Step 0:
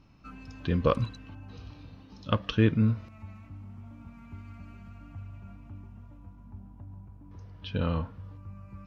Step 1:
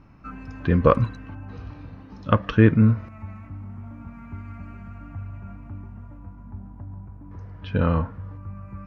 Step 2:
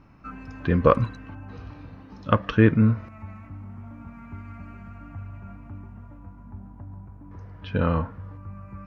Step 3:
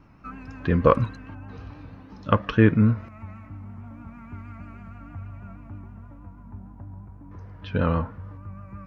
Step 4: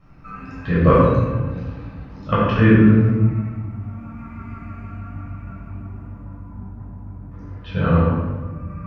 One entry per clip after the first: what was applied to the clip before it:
resonant high shelf 2.5 kHz -9 dB, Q 1.5; trim +7.5 dB
bass shelf 200 Hz -3.5 dB
vibrato 6.3 Hz 52 cents
simulated room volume 880 m³, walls mixed, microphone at 6.2 m; trim -6.5 dB

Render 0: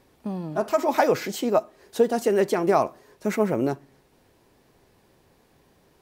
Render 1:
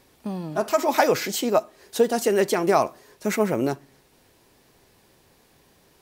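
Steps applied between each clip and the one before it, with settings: treble shelf 2 kHz +7.5 dB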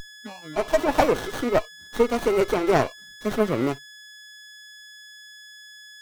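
spectral noise reduction 27 dB; whistle 1.7 kHz -30 dBFS; sliding maximum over 17 samples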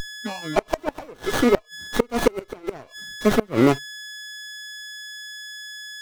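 inverted gate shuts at -13 dBFS, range -29 dB; trim +8.5 dB

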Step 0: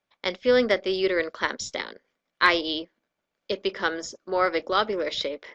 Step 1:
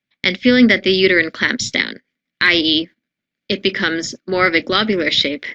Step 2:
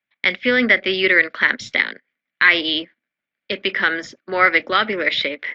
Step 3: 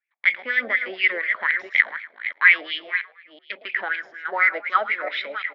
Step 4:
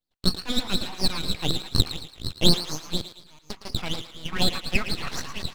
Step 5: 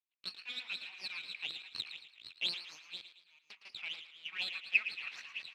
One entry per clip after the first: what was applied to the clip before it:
gate -45 dBFS, range -14 dB; graphic EQ 125/250/500/1000/2000/4000 Hz +11/+11/-4/-9/+11/+6 dB; loudness maximiser +8.5 dB; trim -1 dB
three-band isolator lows -14 dB, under 550 Hz, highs -19 dB, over 2.9 kHz; endings held to a fixed fall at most 590 dB/s; trim +2.5 dB
chunks repeated in reverse 339 ms, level -9 dB; frequency-shifting echo 109 ms, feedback 40%, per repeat +52 Hz, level -16 dB; wah-wah 4.1 Hz 670–2400 Hz, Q 4.9; trim +3.5 dB
full-wave rectifier; AM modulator 250 Hz, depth 15%; on a send: thinning echo 112 ms, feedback 41%, high-pass 510 Hz, level -11.5 dB
band-pass filter 2.5 kHz, Q 5.8

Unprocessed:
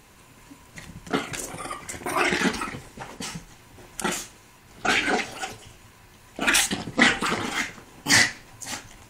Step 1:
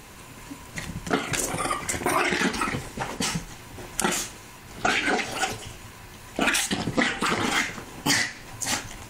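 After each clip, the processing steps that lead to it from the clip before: compression 16:1, threshold -27 dBFS, peak gain reduction 15.5 dB; trim +7.5 dB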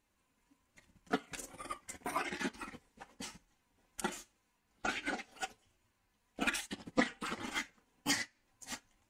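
flange 1.2 Hz, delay 3.2 ms, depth 1.1 ms, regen -32%; upward expansion 2.5:1, over -39 dBFS; trim -3.5 dB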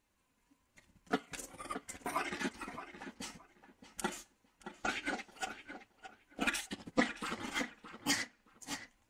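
filtered feedback delay 620 ms, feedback 21%, low-pass 2.9 kHz, level -10.5 dB

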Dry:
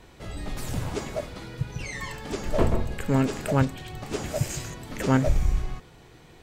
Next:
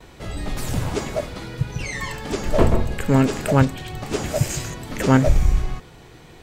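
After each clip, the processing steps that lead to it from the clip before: gate with hold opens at -44 dBFS; trim +6 dB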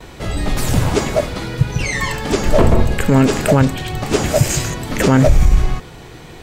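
loudness maximiser +9.5 dB; trim -1 dB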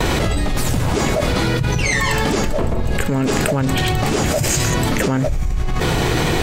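level flattener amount 100%; trim -11.5 dB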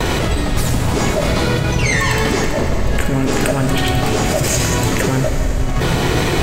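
plate-style reverb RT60 4.2 s, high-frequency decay 0.85×, DRR 3.5 dB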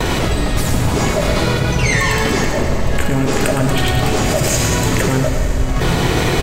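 delay 111 ms -8 dB

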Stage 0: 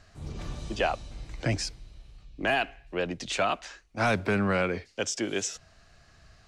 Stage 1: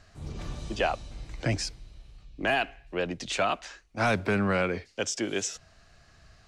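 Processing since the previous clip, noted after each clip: no audible change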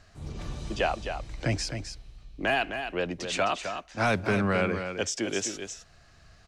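delay 260 ms -8 dB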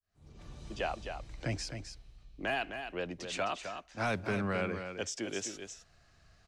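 fade-in on the opening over 0.91 s; trim -7.5 dB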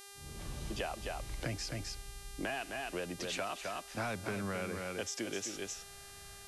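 compression 5:1, threshold -42 dBFS, peak gain reduction 12 dB; mains buzz 400 Hz, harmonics 30, -59 dBFS -1 dB/octave; trim +6 dB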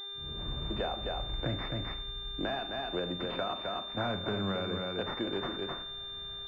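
Schroeder reverb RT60 0.53 s, combs from 30 ms, DRR 9 dB; class-D stage that switches slowly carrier 3.6 kHz; trim +4.5 dB

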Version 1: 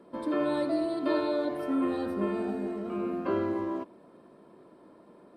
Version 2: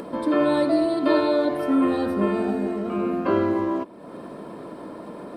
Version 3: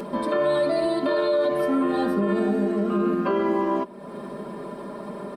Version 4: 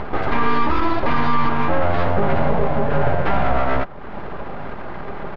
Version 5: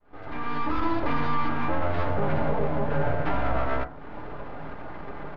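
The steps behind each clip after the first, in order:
band-stop 370 Hz, Q 12; upward compressor, threshold -35 dBFS; trim +8.5 dB
comb 5 ms, depth 89%; peak limiter -14.5 dBFS, peak gain reduction 8.5 dB
full-wave rectifier; distance through air 290 m; trim +8.5 dB
fade-in on the opening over 0.83 s; FDN reverb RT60 0.38 s, low-frequency decay 1.35×, high-frequency decay 0.3×, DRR 6.5 dB; trim -8.5 dB

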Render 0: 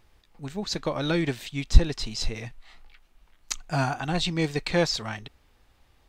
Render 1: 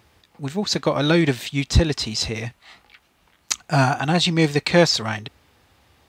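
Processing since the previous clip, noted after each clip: high-pass 71 Hz 24 dB/octave; trim +8 dB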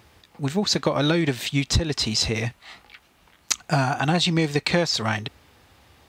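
compression 12:1, threshold -20 dBFS, peak gain reduction 12 dB; trim +3 dB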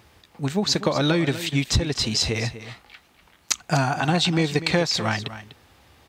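delay 247 ms -13.5 dB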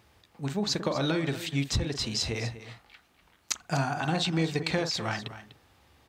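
reverberation, pre-delay 43 ms, DRR 10 dB; trim -7.5 dB

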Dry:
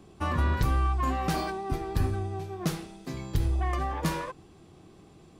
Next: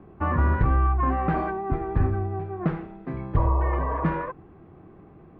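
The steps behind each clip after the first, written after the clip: low-pass 1.9 kHz 24 dB/octave; spectral replace 3.39–4.02 s, 380–1200 Hz after; trim +4.5 dB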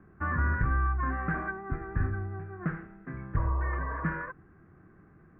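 FFT filter 190 Hz 0 dB, 400 Hz -5 dB, 880 Hz -7 dB, 1.6 kHz +11 dB, 3.6 kHz -16 dB; trim -6.5 dB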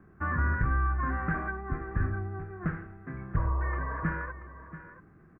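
delay 683 ms -14 dB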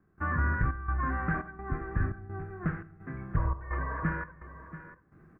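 trance gate "..xxxxxx" 170 bpm -12 dB; on a send at -20 dB: reverberation RT60 1.1 s, pre-delay 7 ms

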